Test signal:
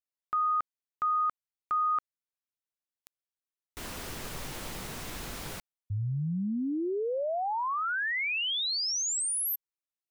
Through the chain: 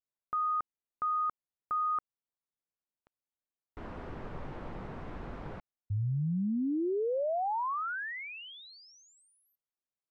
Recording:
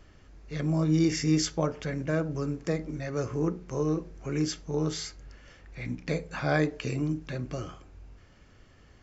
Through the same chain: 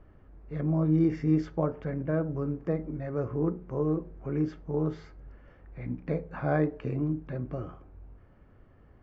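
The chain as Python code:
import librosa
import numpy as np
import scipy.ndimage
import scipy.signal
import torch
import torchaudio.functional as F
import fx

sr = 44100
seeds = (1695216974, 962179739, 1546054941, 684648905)

y = scipy.signal.sosfilt(scipy.signal.butter(2, 1200.0, 'lowpass', fs=sr, output='sos'), x)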